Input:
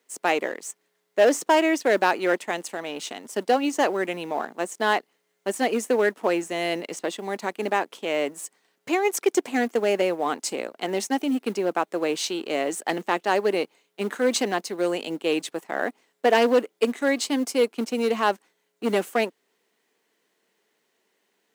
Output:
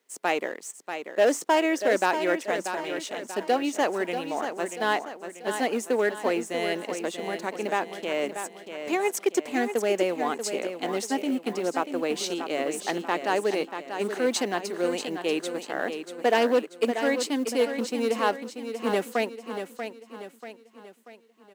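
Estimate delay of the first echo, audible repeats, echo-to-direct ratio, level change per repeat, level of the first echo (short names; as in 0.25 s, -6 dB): 0.637 s, 4, -7.5 dB, -7.0 dB, -8.5 dB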